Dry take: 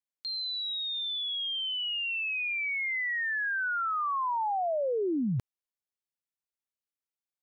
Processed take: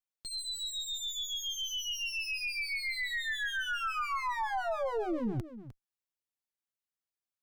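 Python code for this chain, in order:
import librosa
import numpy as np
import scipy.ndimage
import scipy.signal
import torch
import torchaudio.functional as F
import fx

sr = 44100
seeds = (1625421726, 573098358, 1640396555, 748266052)

p1 = fx.lower_of_two(x, sr, delay_ms=9.0)
p2 = p1 + fx.echo_single(p1, sr, ms=305, db=-13.5, dry=0)
y = p2 * librosa.db_to_amplitude(-2.0)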